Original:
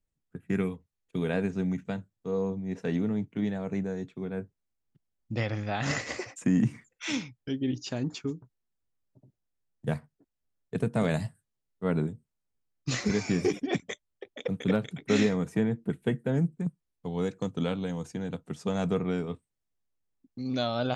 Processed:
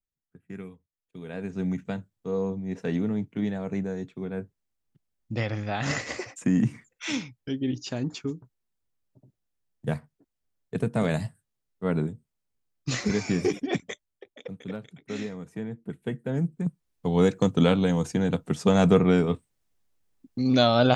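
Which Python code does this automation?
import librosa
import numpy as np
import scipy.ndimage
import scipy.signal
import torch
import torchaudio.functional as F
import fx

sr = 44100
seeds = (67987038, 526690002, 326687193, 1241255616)

y = fx.gain(x, sr, db=fx.line((1.23, -11.0), (1.66, 1.5), (13.83, 1.5), (14.67, -9.5), (15.42, -9.5), (16.35, -1.0), (17.16, 9.5)))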